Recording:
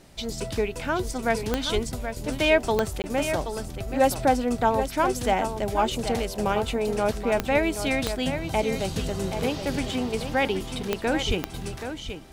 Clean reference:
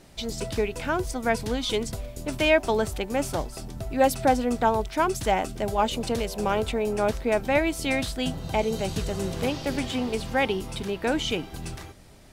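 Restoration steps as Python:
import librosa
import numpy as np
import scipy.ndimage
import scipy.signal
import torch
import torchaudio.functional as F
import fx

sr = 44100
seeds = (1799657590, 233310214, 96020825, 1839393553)

y = fx.fix_declick_ar(x, sr, threshold=10.0)
y = fx.highpass(y, sr, hz=140.0, slope=24, at=(1.74, 1.86), fade=0.02)
y = fx.highpass(y, sr, hz=140.0, slope=24, at=(11.27, 11.39), fade=0.02)
y = fx.fix_interpolate(y, sr, at_s=(3.02,), length_ms=19.0)
y = fx.fix_echo_inverse(y, sr, delay_ms=778, level_db=-9.0)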